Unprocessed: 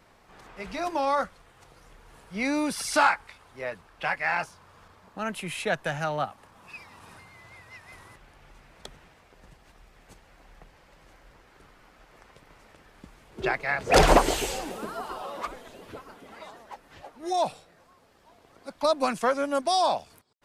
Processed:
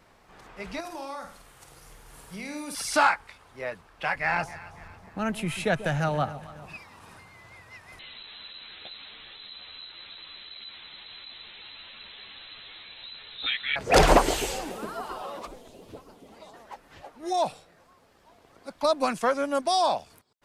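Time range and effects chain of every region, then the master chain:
0:00.80–0:02.75: parametric band 12,000 Hz +12.5 dB 1.6 octaves + downward compressor 5 to 1, threshold −36 dBFS + flutter between parallel walls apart 8.7 metres, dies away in 0.5 s
0:04.15–0:06.77: low-shelf EQ 230 Hz +11.5 dB + delay that swaps between a low-pass and a high-pass 138 ms, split 820 Hz, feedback 67%, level −13.5 dB
0:07.99–0:13.76: converter with a step at zero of −38.5 dBFS + voice inversion scrambler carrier 4,000 Hz + string-ensemble chorus
0:15.39–0:16.54: parametric band 1,600 Hz −12.5 dB 1.4 octaves + highs frequency-modulated by the lows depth 0.23 ms
whole clip: no processing

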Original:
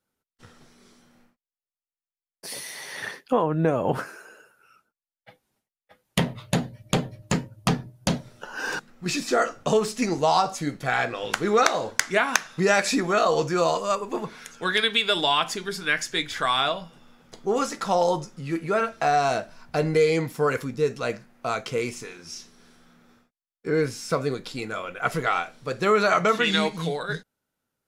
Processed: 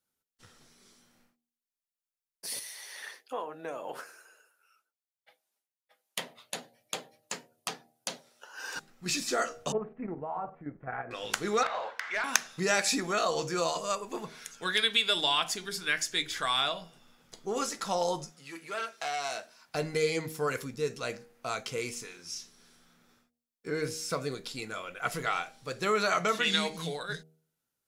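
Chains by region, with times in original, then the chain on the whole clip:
0:02.59–0:08.76: high-pass filter 450 Hz + flanger 1.3 Hz, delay 2.3 ms, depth 6.2 ms, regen −68%
0:09.72–0:11.11: Bessel low-pass filter 1,100 Hz, order 8 + output level in coarse steps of 9 dB
0:11.63–0:12.24: three-way crossover with the lows and the highs turned down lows −22 dB, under 570 Hz, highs −23 dB, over 3,000 Hz + downward compressor 2.5 to 1, threshold −32 dBFS + mid-hump overdrive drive 18 dB, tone 3,100 Hz, clips at −13 dBFS
0:18.31–0:19.75: high-pass filter 810 Hz 6 dB per octave + saturating transformer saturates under 2,000 Hz
whole clip: high-shelf EQ 2,900 Hz +9.5 dB; hum removal 79.19 Hz, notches 10; level −8.5 dB

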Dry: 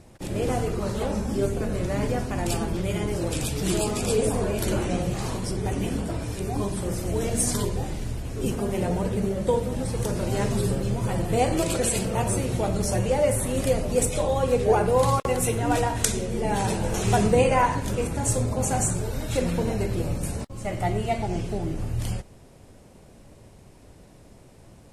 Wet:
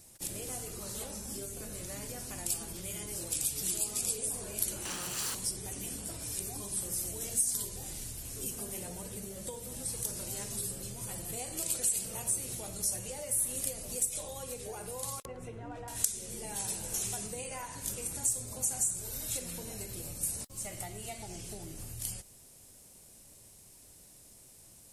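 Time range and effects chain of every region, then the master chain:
0:04.85–0:05.35: lower of the sound and its delayed copy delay 0.69 ms + mid-hump overdrive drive 20 dB, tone 3,000 Hz, clips at −15.5 dBFS
0:15.25–0:15.88: low-pass filter 1,400 Hz + notch filter 810 Hz, Q 17
whole clip: high-shelf EQ 4,500 Hz +10.5 dB; downward compressor 6 to 1, threshold −27 dBFS; first-order pre-emphasis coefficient 0.8

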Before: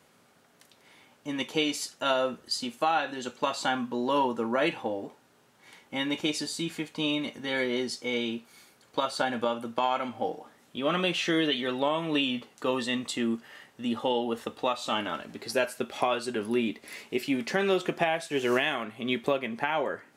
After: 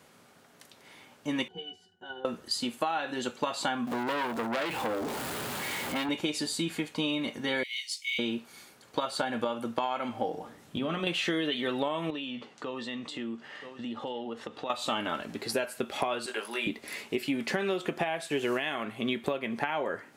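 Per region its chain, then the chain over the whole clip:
0:01.48–0:02.25: high-shelf EQ 9,100 Hz +6.5 dB + resonances in every octave F#, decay 0.16 s
0:03.87–0:06.09: converter with a step at zero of −32.5 dBFS + high-pass filter 55 Hz 24 dB per octave + saturating transformer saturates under 2,800 Hz
0:07.63–0:08.19: Chebyshev high-pass filter 2,100 Hz, order 6 + floating-point word with a short mantissa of 4 bits
0:10.34–0:11.07: low-shelf EQ 240 Hz +12 dB + downward compressor, threshold −29 dBFS + mains-hum notches 60/120/180/240/300/360/420/480/540/600 Hz
0:12.10–0:14.70: single-tap delay 978 ms −22.5 dB + downward compressor 3 to 1, threshold −40 dBFS + band-pass filter 100–5,300 Hz
0:16.26–0:16.67: high-pass filter 770 Hz + double-tracking delay 18 ms −3.5 dB
whole clip: dynamic equaliser 5,800 Hz, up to −5 dB, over −54 dBFS, Q 2.9; downward compressor, threshold −30 dBFS; level +3.5 dB

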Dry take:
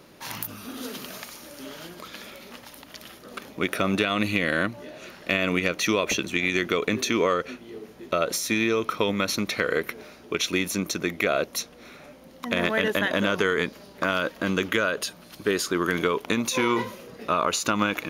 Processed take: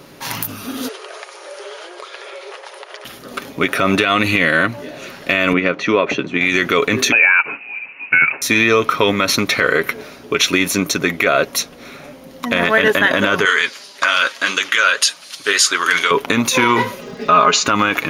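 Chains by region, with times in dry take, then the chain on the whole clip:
0:00.88–0:03.05: linear-phase brick-wall band-pass 340–11,000 Hz + high-shelf EQ 3,000 Hz −11 dB + multiband upward and downward compressor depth 100%
0:05.53–0:06.41: high-pass filter 140 Hz + head-to-tape spacing loss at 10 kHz 29 dB
0:07.12–0:08.42: voice inversion scrambler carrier 2,800 Hz + high-pass filter 170 Hz
0:13.45–0:16.11: meter weighting curve ITU-R 468 + flanger 1.7 Hz, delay 0.9 ms, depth 9.4 ms, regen +53%
0:17.00–0:17.66: Butterworth low-pass 6,900 Hz + comb filter 4.8 ms, depth 83% + surface crackle 340 per second −48 dBFS
whole clip: comb filter 7.3 ms, depth 36%; dynamic equaliser 1,600 Hz, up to +5 dB, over −35 dBFS, Q 0.75; boost into a limiter +10.5 dB; level −1 dB

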